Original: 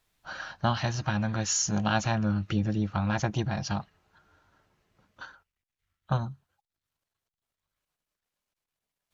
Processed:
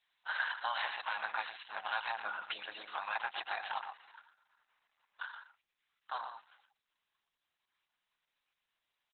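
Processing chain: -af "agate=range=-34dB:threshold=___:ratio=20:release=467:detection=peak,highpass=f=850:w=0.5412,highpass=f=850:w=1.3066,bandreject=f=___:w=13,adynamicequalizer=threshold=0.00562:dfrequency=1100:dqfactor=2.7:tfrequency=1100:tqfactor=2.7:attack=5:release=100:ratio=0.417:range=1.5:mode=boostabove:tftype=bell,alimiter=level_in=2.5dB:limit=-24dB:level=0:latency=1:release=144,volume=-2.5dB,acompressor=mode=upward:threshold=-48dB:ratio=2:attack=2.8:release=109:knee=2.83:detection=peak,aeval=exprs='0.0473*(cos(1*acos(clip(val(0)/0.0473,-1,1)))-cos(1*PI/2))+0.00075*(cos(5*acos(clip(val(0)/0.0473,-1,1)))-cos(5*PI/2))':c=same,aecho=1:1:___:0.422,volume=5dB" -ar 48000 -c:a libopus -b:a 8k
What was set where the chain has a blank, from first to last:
-55dB, 1300, 119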